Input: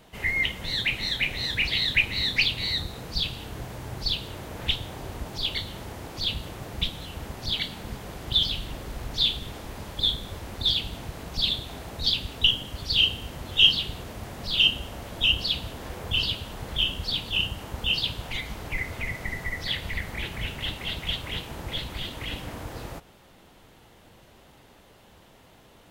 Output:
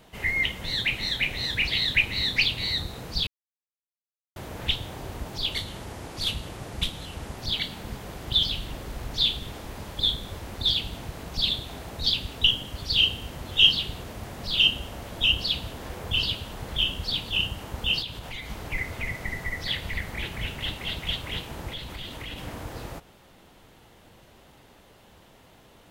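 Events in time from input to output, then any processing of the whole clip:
3.27–4.36 s: mute
5.52–7.38 s: CVSD coder 64 kbps
18.02–18.50 s: compression 2.5:1, threshold -34 dBFS
21.68–22.38 s: compression 2.5:1, threshold -34 dBFS

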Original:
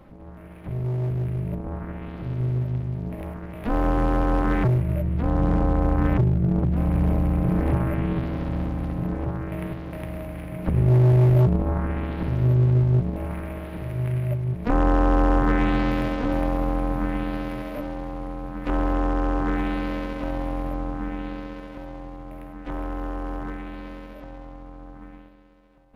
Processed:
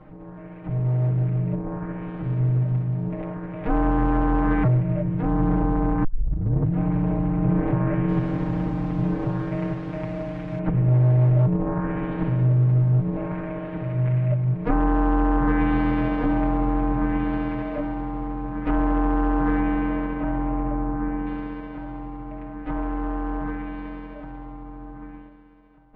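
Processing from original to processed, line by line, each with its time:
6.04 s: tape start 0.69 s
8.08–10.59 s: one-bit delta coder 64 kbps, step -38.5 dBFS
19.59–21.25 s: low-pass 2.7 kHz -> 1.9 kHz
whole clip: compression, threshold -20 dBFS; low-pass 2.2 kHz 12 dB/octave; comb 6.5 ms, depth 97%

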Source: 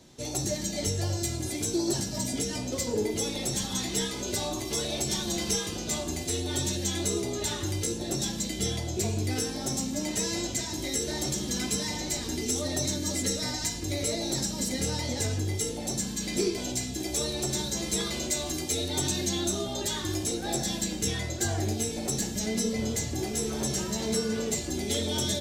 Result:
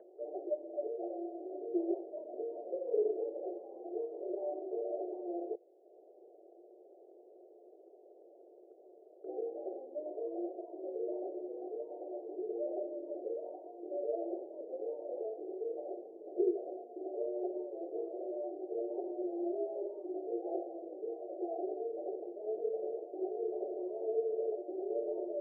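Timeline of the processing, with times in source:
5.55–9.24 s: room tone
whole clip: Chebyshev band-pass 350–720 Hz, order 4; upward compressor, threshold -49 dBFS; trim -1 dB

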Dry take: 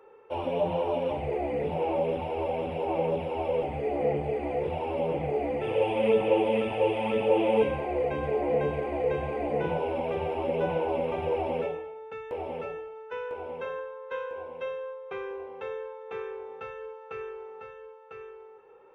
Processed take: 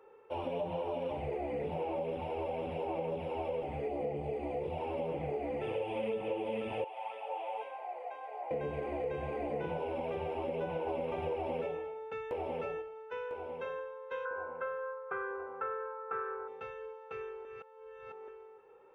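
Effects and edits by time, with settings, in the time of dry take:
3.88–4.78 s: peaking EQ 1.6 kHz -7.5 dB 0.68 oct
6.84–8.51 s: ladder high-pass 680 Hz, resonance 60%
10.87–12.82 s: gain +3.5 dB
14.25–16.48 s: resonant low-pass 1.4 kHz, resonance Q 10
17.45–18.28 s: reverse
whole clip: compression, threshold -28 dBFS; trim -4.5 dB

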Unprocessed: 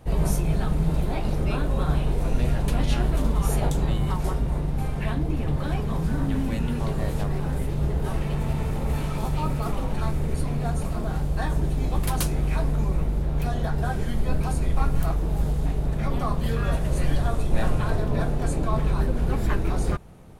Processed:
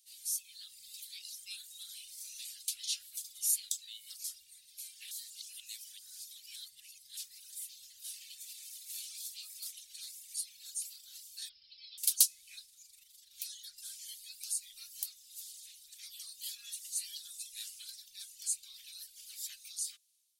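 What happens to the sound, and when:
5.11–7.17 s: reverse
11.49–11.98 s: Chebyshev low-pass 5.3 kHz, order 8
12.65–13.33 s: AM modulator 24 Hz, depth 25%
whole clip: reverb removal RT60 1.7 s; inverse Chebyshev high-pass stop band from 960 Hz, stop band 70 dB; level rider gain up to 7 dB

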